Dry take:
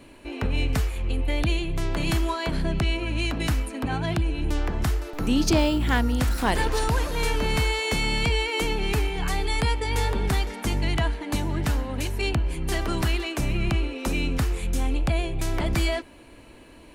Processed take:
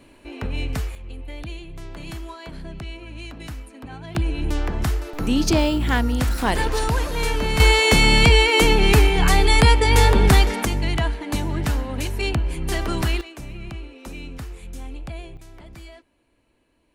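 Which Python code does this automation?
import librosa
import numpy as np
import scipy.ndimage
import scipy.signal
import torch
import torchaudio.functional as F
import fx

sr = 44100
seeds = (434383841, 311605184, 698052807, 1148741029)

y = fx.gain(x, sr, db=fx.steps((0.0, -2.0), (0.95, -10.0), (4.15, 2.0), (7.6, 10.0), (10.65, 2.0), (13.21, -10.0), (15.37, -18.0)))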